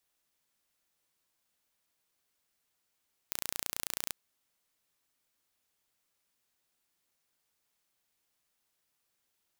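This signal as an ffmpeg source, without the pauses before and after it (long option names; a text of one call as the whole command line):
ffmpeg -f lavfi -i "aevalsrc='0.447*eq(mod(n,1510),0)':duration=0.81:sample_rate=44100" out.wav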